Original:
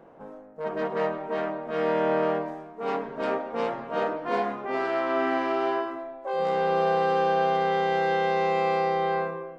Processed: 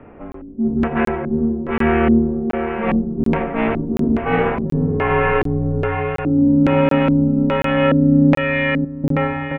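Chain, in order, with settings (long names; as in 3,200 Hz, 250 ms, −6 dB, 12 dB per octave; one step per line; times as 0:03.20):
0:08.37–0:09.04: elliptic band-stop filter 180–1,500 Hz
in parallel at −2 dB: downward compressor, threshold −32 dBFS, peak gain reduction 11.5 dB
on the sum: harmonic generator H 7 −33 dB, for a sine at −10.5 dBFS
single-sideband voice off tune −240 Hz 240–3,400 Hz
on a send: repeating echo 474 ms, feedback 36%, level −6 dB
on the sum: auto-filter low-pass square 1.2 Hz 260–2,400 Hz
regular buffer underruns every 0.73 s, samples 1,024, zero, from 0:00.32
level +6.5 dB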